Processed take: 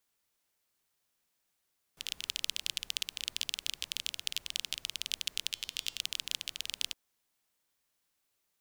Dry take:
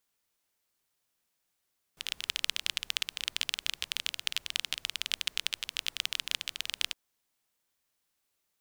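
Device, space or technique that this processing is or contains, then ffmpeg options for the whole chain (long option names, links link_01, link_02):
one-band saturation: -filter_complex "[0:a]acrossover=split=270|3100[link_01][link_02][link_03];[link_02]asoftclip=type=tanh:threshold=-32.5dB[link_04];[link_01][link_04][link_03]amix=inputs=3:normalize=0,asettb=1/sr,asplit=3[link_05][link_06][link_07];[link_05]atrim=end=5.504[link_08];[link_06]atrim=start=5.5:end=6.01,asetpts=PTS-STARTPTS,afade=type=in:duration=0.004:curve=qsin,afade=type=out:start_time=0.506:duration=0.004:curve=qsin,bandreject=frequency=307.1:width_type=h:width=4,bandreject=frequency=614.2:width_type=h:width=4,bandreject=frequency=921.3:width_type=h:width=4,bandreject=frequency=1228.4:width_type=h:width=4,bandreject=frequency=1535.5:width_type=h:width=4,bandreject=frequency=1842.6:width_type=h:width=4,bandreject=frequency=2149.7:width_type=h:width=4,bandreject=frequency=2456.8:width_type=h:width=4,bandreject=frequency=2763.9:width_type=h:width=4,bandreject=frequency=3071:width_type=h:width=4,bandreject=frequency=3378.1:width_type=h:width=4,bandreject=frequency=3685.2:width_type=h:width=4,bandreject=frequency=3992.3:width_type=h:width=4,bandreject=frequency=4299.4:width_type=h:width=4,bandreject=frequency=4606.5:width_type=h:width=4,bandreject=frequency=4913.6:width_type=h:width=4,bandreject=frequency=5220.7:width_type=h:width=4,bandreject=frequency=5527.8:width_type=h:width=4,bandreject=frequency=5834.9:width_type=h:width=4,bandreject=frequency=6142:width_type=h:width=4,bandreject=frequency=6449.1:width_type=h:width=4,bandreject=frequency=6756.2:width_type=h:width=4,bandreject=frequency=7063.3:width_type=h:width=4,bandreject=frequency=7370.4:width_type=h:width=4,bandreject=frequency=7677.5:width_type=h:width=4,bandreject=frequency=7984.6:width_type=h:width=4,bandreject=frequency=8291.7:width_type=h:width=4,bandreject=frequency=8598.8:width_type=h:width=4,bandreject=frequency=8905.9:width_type=h:width=4,bandreject=frequency=9213:width_type=h:width=4[link_09];[link_07]atrim=start=6.006[link_10];[link_08][link_09]acrossfade=duration=0.004:curve1=hsin:curve2=qsin[link_11];[link_11][link_10]acrossfade=duration=0.004:curve1=qsin:curve2=hsin"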